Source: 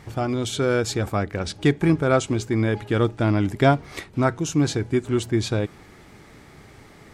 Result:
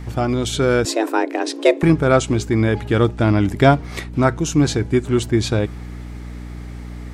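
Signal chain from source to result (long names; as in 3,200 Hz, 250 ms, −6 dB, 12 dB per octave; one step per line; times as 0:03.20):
mains hum 60 Hz, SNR 13 dB
0:00.85–0:01.83: frequency shifter +220 Hz
level +4.5 dB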